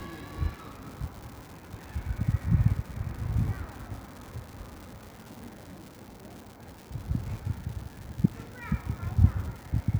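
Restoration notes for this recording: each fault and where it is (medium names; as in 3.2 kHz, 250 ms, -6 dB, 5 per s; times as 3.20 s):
crackle 250 per s -38 dBFS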